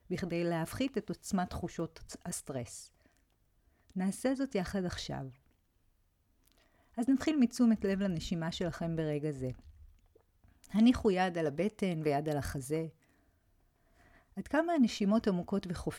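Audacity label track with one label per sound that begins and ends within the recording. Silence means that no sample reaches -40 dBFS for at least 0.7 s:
3.960000	5.280000	sound
6.980000	9.520000	sound
10.640000	12.870000	sound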